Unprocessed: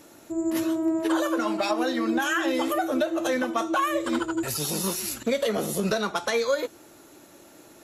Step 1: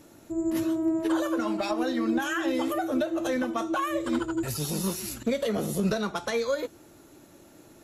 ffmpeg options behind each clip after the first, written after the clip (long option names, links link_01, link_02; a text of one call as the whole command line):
ffmpeg -i in.wav -af "lowshelf=frequency=230:gain=11.5,volume=-5dB" out.wav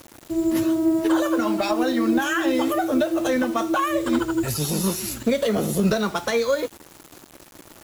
ffmpeg -i in.wav -af "acrusher=bits=7:mix=0:aa=0.000001,volume=6dB" out.wav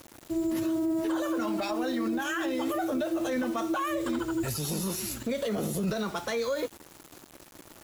ffmpeg -i in.wav -af "alimiter=limit=-18dB:level=0:latency=1:release=31,volume=-4.5dB" out.wav